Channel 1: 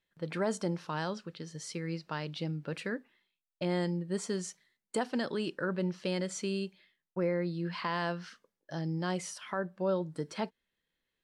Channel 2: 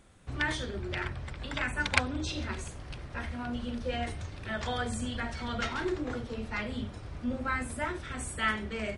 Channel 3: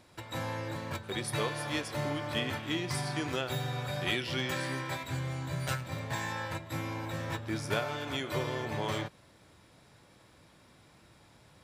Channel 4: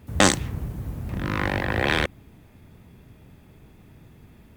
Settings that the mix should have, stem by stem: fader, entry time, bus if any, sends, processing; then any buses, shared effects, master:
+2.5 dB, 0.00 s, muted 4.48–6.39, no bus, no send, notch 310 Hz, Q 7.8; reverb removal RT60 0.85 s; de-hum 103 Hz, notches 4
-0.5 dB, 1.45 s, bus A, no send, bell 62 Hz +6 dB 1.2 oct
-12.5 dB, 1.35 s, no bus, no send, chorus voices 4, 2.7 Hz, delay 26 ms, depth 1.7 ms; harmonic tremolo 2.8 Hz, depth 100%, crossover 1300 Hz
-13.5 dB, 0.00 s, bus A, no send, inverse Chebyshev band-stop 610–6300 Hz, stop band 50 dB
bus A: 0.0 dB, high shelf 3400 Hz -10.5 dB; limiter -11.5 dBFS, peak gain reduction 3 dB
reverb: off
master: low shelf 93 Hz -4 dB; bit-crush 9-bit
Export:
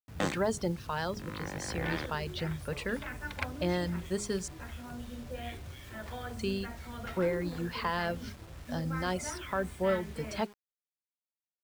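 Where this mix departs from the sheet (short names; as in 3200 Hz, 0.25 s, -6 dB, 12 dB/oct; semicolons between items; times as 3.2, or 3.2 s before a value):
stem 2 -0.5 dB -> -7.5 dB; stem 4: missing inverse Chebyshev band-stop 610–6300 Hz, stop band 50 dB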